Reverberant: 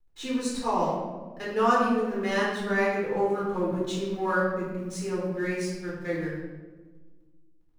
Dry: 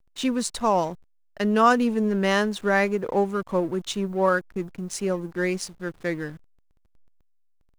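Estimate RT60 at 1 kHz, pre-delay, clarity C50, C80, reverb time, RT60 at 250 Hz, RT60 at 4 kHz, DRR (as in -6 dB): 1.1 s, 3 ms, 0.5 dB, 3.0 dB, 1.3 s, 2.2 s, 0.80 s, -7.5 dB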